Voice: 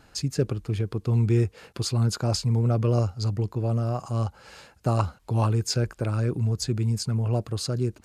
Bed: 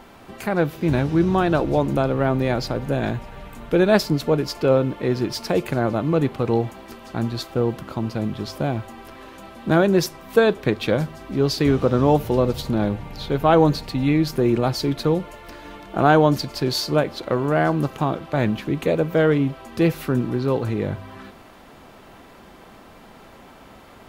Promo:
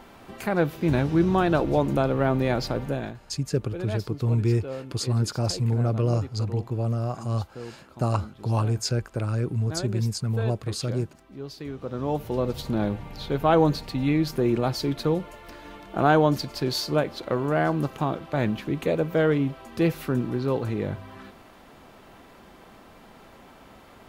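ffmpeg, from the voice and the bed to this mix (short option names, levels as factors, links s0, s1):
-filter_complex "[0:a]adelay=3150,volume=0.891[s0];[1:a]volume=3.55,afade=t=out:st=2.8:d=0.37:silence=0.177828,afade=t=in:st=11.77:d=0.99:silence=0.211349[s1];[s0][s1]amix=inputs=2:normalize=0"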